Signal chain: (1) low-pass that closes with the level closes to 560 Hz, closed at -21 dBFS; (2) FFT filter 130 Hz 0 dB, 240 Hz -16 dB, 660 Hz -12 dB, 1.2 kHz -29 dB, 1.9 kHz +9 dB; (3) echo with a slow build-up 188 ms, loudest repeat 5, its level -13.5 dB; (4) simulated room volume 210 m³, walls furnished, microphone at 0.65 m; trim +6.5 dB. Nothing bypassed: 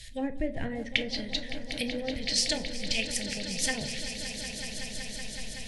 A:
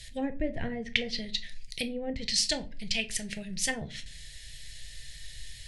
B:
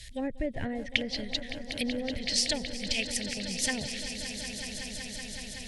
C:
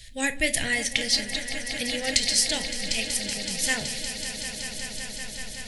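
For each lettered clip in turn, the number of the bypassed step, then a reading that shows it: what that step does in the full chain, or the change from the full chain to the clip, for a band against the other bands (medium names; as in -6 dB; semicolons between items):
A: 3, echo-to-direct -2.0 dB to -7.5 dB; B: 4, echo-to-direct -2.0 dB to -4.0 dB; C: 1, 125 Hz band -5.0 dB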